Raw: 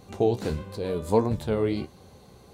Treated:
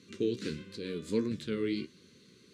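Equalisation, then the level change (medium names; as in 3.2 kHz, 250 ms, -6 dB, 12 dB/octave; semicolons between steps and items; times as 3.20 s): band-pass 250–6500 Hz; Butterworth band-stop 760 Hz, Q 0.54; 0.0 dB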